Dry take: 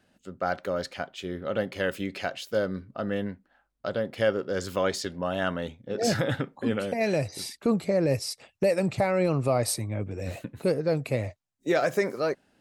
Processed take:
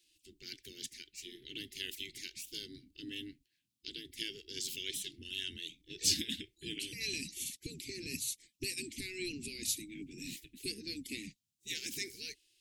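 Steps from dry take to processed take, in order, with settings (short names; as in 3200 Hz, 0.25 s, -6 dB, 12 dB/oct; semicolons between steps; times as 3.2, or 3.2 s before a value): inverse Chebyshev band-stop 550–1300 Hz, stop band 60 dB; spectral gate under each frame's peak -15 dB weak; gain +5 dB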